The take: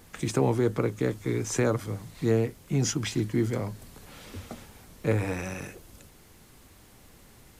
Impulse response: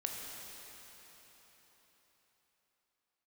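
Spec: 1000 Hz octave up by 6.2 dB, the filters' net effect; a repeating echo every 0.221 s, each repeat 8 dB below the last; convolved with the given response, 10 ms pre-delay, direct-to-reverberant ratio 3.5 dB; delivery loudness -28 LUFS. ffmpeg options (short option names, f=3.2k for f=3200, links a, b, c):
-filter_complex "[0:a]equalizer=f=1k:t=o:g=8,aecho=1:1:221|442|663|884|1105:0.398|0.159|0.0637|0.0255|0.0102,asplit=2[a][b];[1:a]atrim=start_sample=2205,adelay=10[c];[b][c]afir=irnorm=-1:irlink=0,volume=-5dB[d];[a][d]amix=inputs=2:normalize=0,volume=-2dB"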